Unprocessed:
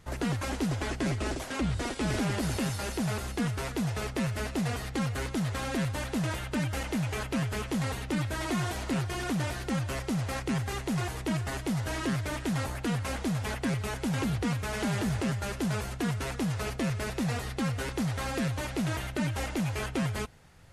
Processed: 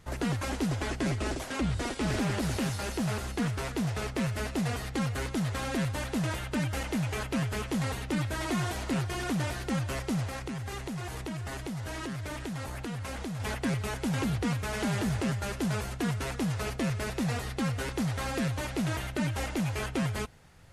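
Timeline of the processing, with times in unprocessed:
1.96–4.22 s: loudspeaker Doppler distortion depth 0.15 ms
10.27–13.40 s: compression, threshold -33 dBFS

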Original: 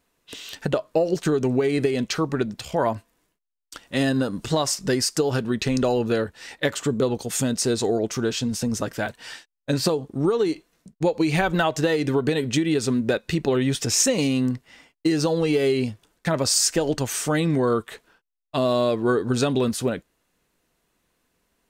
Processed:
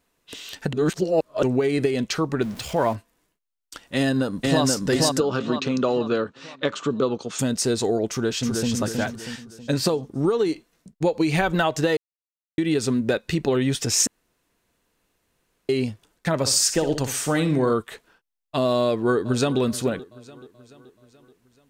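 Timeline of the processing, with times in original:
0.73–1.43 s: reverse
2.42–2.96 s: jump at every zero crossing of -36 dBFS
3.95–4.63 s: echo throw 480 ms, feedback 45%, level -1 dB
5.20–7.39 s: cabinet simulation 160–6000 Hz, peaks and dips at 760 Hz -4 dB, 1.2 kHz +8 dB, 1.9 kHz -8 dB, 5 kHz -5 dB
8.09–8.71 s: echo throw 320 ms, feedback 45%, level -4 dB
11.97–12.58 s: mute
14.07–15.69 s: room tone
16.34–17.72 s: flutter echo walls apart 10.7 m, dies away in 0.35 s
18.82–19.60 s: echo throw 430 ms, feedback 55%, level -18 dB

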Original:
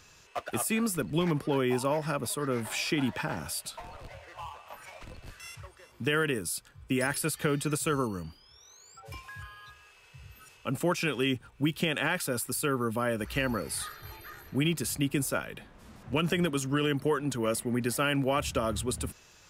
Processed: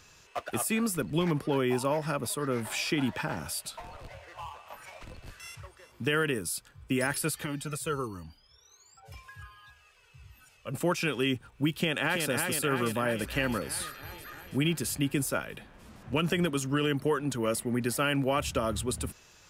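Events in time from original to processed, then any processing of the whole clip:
7.44–10.74 s: Shepard-style flanger falling 1.4 Hz
11.71–12.26 s: echo throw 330 ms, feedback 70%, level -4 dB

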